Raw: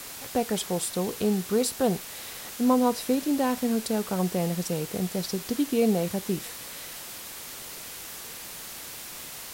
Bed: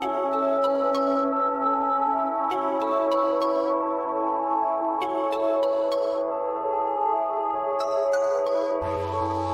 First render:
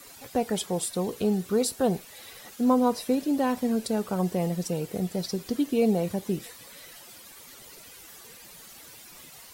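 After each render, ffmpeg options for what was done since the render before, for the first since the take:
-af "afftdn=nr=12:nf=-41"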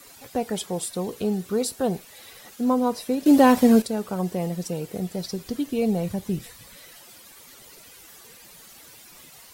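-filter_complex "[0:a]asettb=1/sr,asplit=3[s0][s1][s2];[s0]atrim=end=5.034[s3];[s1]atrim=start=5.03:end=6.76,asetpts=PTS-STARTPTS,afade=t=in:d=0.004:c=qsin,afade=t=out:st=1.726:d=0.004:c=qsin,asubboost=boost=7.5:cutoff=160[s4];[s2]atrim=start=6.756[s5];[s3][s4]acrossfade=d=0.004:c1=hsin:c2=qsin[s6];[s6][s5]acrossfade=d=0.004:c1=qsin:c2=hsin,asplit=3[s7][s8][s9];[s7]atrim=end=3.262[s10];[s8]atrim=start=3.258:end=3.822,asetpts=PTS-STARTPTS,volume=3.35[s11];[s9]atrim=start=3.818[s12];[s10][s11]acrossfade=d=0.004:c1=hsin:c2=hsin[s13];[s13][s12]acrossfade=d=0.004:c1=hsin:c2=hsin"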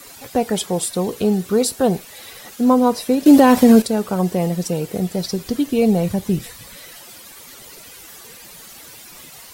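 -af "alimiter=level_in=2.37:limit=0.891:release=50:level=0:latency=1"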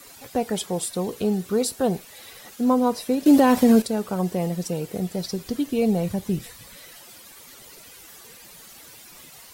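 -af "volume=0.531"

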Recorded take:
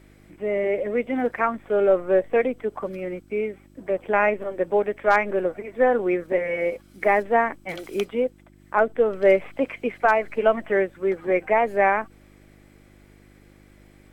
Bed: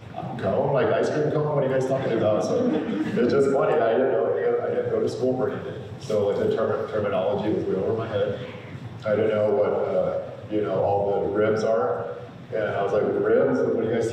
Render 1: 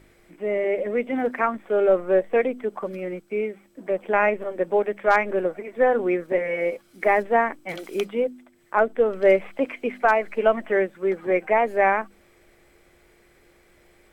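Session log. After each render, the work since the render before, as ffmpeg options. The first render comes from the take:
-af "bandreject=f=50:t=h:w=4,bandreject=f=100:t=h:w=4,bandreject=f=150:t=h:w=4,bandreject=f=200:t=h:w=4,bandreject=f=250:t=h:w=4,bandreject=f=300:t=h:w=4"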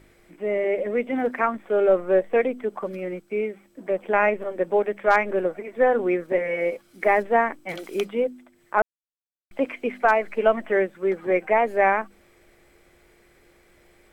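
-filter_complex "[0:a]asplit=3[s0][s1][s2];[s0]atrim=end=8.82,asetpts=PTS-STARTPTS,afade=t=out:st=8.816:d=0.004:c=hsin[s3];[s1]atrim=start=8.82:end=9.51,asetpts=PTS-STARTPTS,volume=0[s4];[s2]atrim=start=9.51,asetpts=PTS-STARTPTS,afade=t=in:d=0.004:c=hsin[s5];[s3][s4][s5]concat=n=3:v=0:a=1"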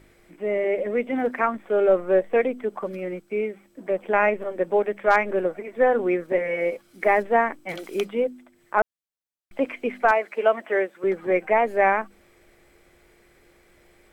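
-filter_complex "[0:a]asettb=1/sr,asplit=3[s0][s1][s2];[s0]atrim=end=10.114[s3];[s1]atrim=start=10.11:end=11.04,asetpts=PTS-STARTPTS,afade=t=in:d=0.004:c=qsin,afade=t=out:st=0.926:d=0.004:c=qsin,highpass=360[s4];[s2]atrim=start=11.036[s5];[s3][s4]acrossfade=d=0.004:c1=hsin:c2=qsin[s6];[s6][s5]acrossfade=d=0.004:c1=qsin:c2=hsin"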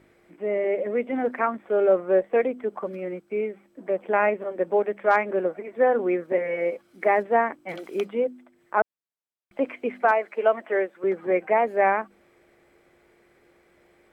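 -af "highpass=f=170:p=1,highshelf=f=2800:g=-10"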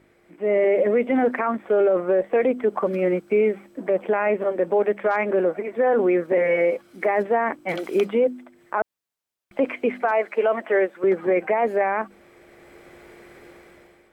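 -af "dynaudnorm=f=240:g=5:m=4.73,alimiter=limit=0.251:level=0:latency=1:release=14"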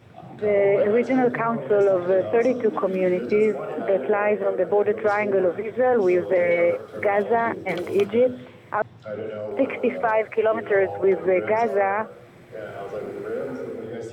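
-filter_complex "[1:a]volume=0.335[s0];[0:a][s0]amix=inputs=2:normalize=0"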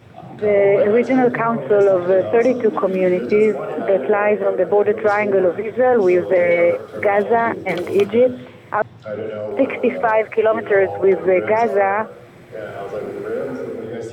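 -af "volume=1.78"

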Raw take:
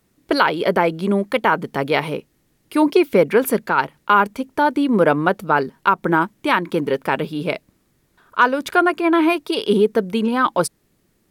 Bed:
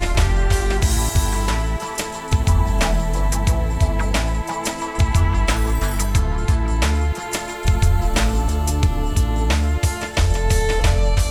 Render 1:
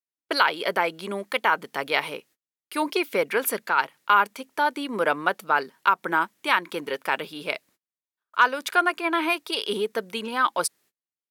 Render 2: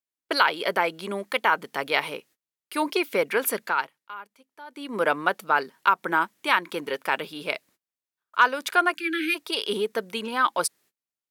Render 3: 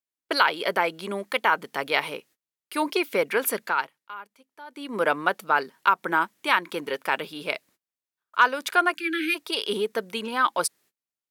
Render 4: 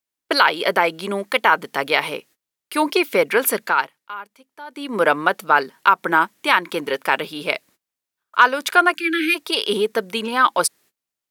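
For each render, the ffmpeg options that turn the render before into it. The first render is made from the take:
-af "highpass=f=1400:p=1,agate=range=0.0224:threshold=0.00224:ratio=16:detection=peak"
-filter_complex "[0:a]asplit=3[s0][s1][s2];[s0]afade=t=out:st=8.94:d=0.02[s3];[s1]asuperstop=centerf=720:order=20:qfactor=0.65,afade=t=in:st=8.94:d=0.02,afade=t=out:st=9.34:d=0.02[s4];[s2]afade=t=in:st=9.34:d=0.02[s5];[s3][s4][s5]amix=inputs=3:normalize=0,asplit=3[s6][s7][s8];[s6]atrim=end=4,asetpts=PTS-STARTPTS,afade=t=out:st=3.66:d=0.34:silence=0.0944061[s9];[s7]atrim=start=4:end=4.67,asetpts=PTS-STARTPTS,volume=0.0944[s10];[s8]atrim=start=4.67,asetpts=PTS-STARTPTS,afade=t=in:d=0.34:silence=0.0944061[s11];[s9][s10][s11]concat=n=3:v=0:a=1"
-af anull
-af "volume=2.11,alimiter=limit=0.891:level=0:latency=1"

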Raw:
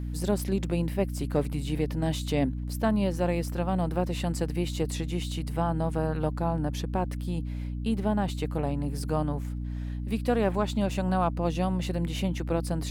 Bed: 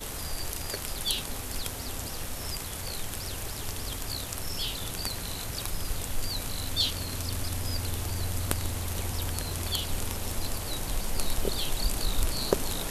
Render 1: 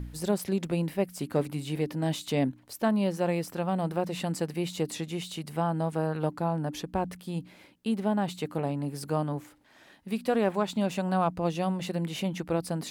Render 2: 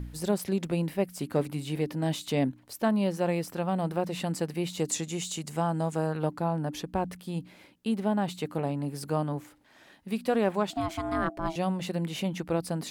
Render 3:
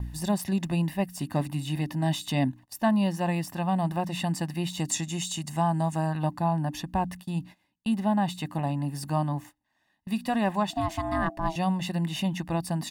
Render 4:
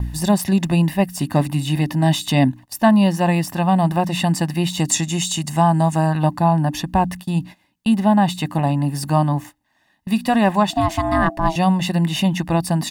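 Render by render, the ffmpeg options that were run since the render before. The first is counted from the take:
-af "bandreject=f=60:t=h:w=4,bandreject=f=120:t=h:w=4,bandreject=f=180:t=h:w=4,bandreject=f=240:t=h:w=4,bandreject=f=300:t=h:w=4"
-filter_complex "[0:a]asettb=1/sr,asplit=3[s0][s1][s2];[s0]atrim=end=4.794[s3];[s1]atrim=start=4.79:end=6.13,asetpts=PTS-STARTPTS,afade=t=in:d=0.004:c=qsin,afade=t=out:st=1.336:d=0.004:c=qsin,equalizer=f=7000:t=o:w=0.54:g=13.5[s4];[s2]atrim=start=6.126[s5];[s3][s4]acrossfade=d=0.004:c1=hsin:c2=qsin[s6];[s6][s5]acrossfade=d=0.004:c1=qsin:c2=hsin,asettb=1/sr,asplit=3[s7][s8][s9];[s7]atrim=end=10.704[s10];[s8]atrim=start=10.7:end=11.56,asetpts=PTS-STARTPTS,afade=t=in:d=0.004:c=qsin,afade=t=out:st=0.856:d=0.004:c=qsin,aeval=exprs='val(0)*sin(2*PI*490*n/s)':c=same[s11];[s9]atrim=start=11.556[s12];[s10][s11]acrossfade=d=0.004:c1=hsin:c2=qsin[s13];[s13][s12]acrossfade=d=0.004:c1=qsin:c2=hsin"
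-af "agate=range=0.112:threshold=0.00562:ratio=16:detection=peak,aecho=1:1:1.1:0.84"
-af "volume=3.16"

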